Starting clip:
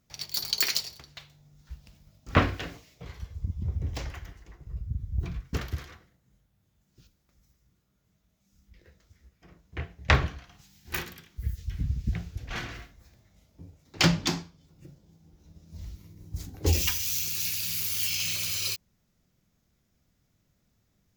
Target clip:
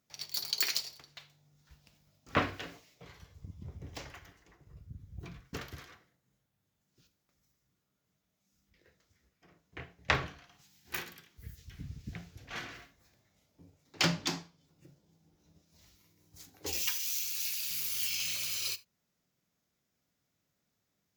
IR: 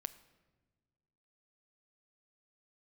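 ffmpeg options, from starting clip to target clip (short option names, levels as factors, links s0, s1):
-filter_complex "[0:a]asetnsamples=n=441:p=0,asendcmd='15.62 highpass f 930;17.71 highpass f 340',highpass=f=260:p=1[s0];[1:a]atrim=start_sample=2205,atrim=end_sample=3969[s1];[s0][s1]afir=irnorm=-1:irlink=0,volume=0.794"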